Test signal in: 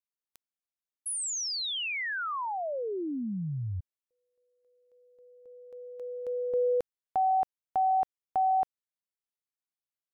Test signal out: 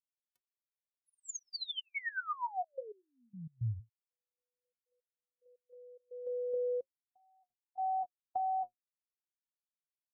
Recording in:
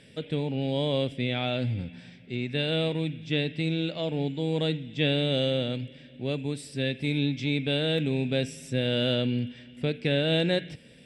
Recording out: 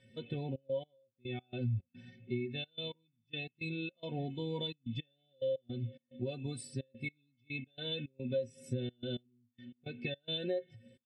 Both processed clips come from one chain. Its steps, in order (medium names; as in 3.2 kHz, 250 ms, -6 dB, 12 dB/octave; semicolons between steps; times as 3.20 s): inharmonic resonator 110 Hz, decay 0.21 s, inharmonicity 0.03; compression 16:1, threshold -42 dBFS; trance gate "xxxx.x...x.xx.x" 108 bpm -24 dB; spectral contrast expander 1.5:1; trim +7.5 dB